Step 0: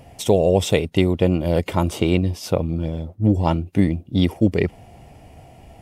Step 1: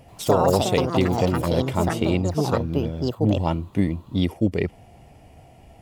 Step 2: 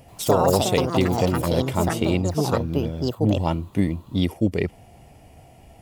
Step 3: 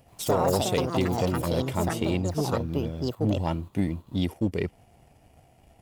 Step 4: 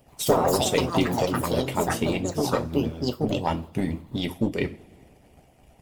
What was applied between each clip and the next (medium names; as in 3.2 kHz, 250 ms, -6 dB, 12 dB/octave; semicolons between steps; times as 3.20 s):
ever faster or slower copies 85 ms, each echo +6 st, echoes 2; trim -4 dB
treble shelf 6.6 kHz +6.5 dB
waveshaping leveller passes 1; trim -8 dB
two-slope reverb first 0.32 s, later 2 s, from -22 dB, DRR 3.5 dB; harmonic-percussive split harmonic -15 dB; trim +5.5 dB